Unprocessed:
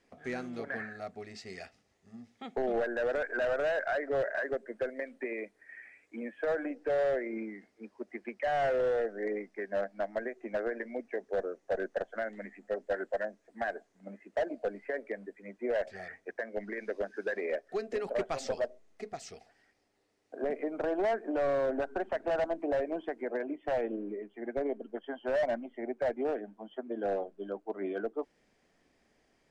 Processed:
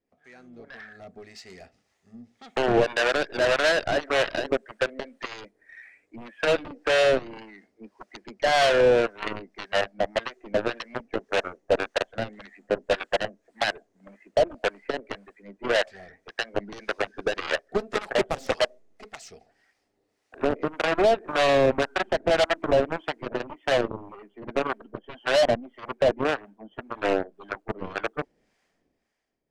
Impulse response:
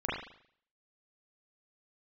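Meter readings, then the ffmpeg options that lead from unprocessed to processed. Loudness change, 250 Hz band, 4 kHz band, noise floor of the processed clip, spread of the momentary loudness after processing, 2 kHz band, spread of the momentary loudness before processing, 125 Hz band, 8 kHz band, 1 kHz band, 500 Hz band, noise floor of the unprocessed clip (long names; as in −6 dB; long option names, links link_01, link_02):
+9.0 dB, +5.5 dB, +21.5 dB, −74 dBFS, 21 LU, +10.0 dB, 14 LU, +13.5 dB, can't be measured, +9.5 dB, +7.0 dB, −72 dBFS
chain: -filter_complex "[0:a]dynaudnorm=framelen=130:gausssize=13:maxgain=14dB,aeval=exprs='0.299*(cos(1*acos(clip(val(0)/0.299,-1,1)))-cos(1*PI/2))+0.133*(cos(3*acos(clip(val(0)/0.299,-1,1)))-cos(3*PI/2))+0.015*(cos(6*acos(clip(val(0)/0.299,-1,1)))-cos(6*PI/2))+0.00668*(cos(8*acos(clip(val(0)/0.299,-1,1)))-cos(8*PI/2))':channel_layout=same,acrossover=split=710[link_01][link_02];[link_01]aeval=exprs='val(0)*(1-0.7/2+0.7/2*cos(2*PI*1.8*n/s))':channel_layout=same[link_03];[link_02]aeval=exprs='val(0)*(1-0.7/2-0.7/2*cos(2*PI*1.8*n/s))':channel_layout=same[link_04];[link_03][link_04]amix=inputs=2:normalize=0"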